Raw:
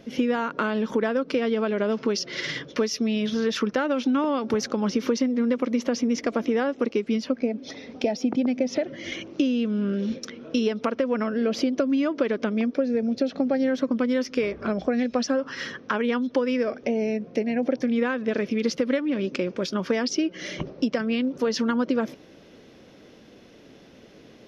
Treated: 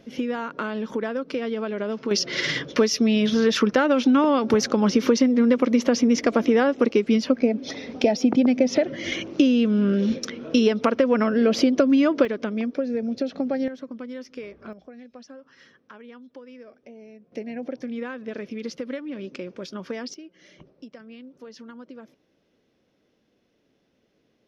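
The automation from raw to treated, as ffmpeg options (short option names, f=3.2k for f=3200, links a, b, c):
-af "asetnsamples=n=441:p=0,asendcmd='2.11 volume volume 5dB;12.25 volume volume -2dB;13.68 volume volume -12dB;14.73 volume volume -20dB;17.32 volume volume -8dB;20.14 volume volume -18.5dB',volume=-3.5dB"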